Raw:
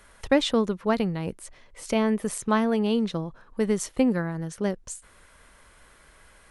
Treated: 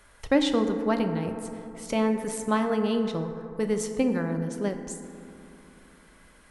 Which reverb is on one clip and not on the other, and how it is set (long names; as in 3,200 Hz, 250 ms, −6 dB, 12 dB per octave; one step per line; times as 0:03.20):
feedback delay network reverb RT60 2.9 s, low-frequency decay 1.2×, high-frequency decay 0.3×, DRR 5.5 dB
level −2.5 dB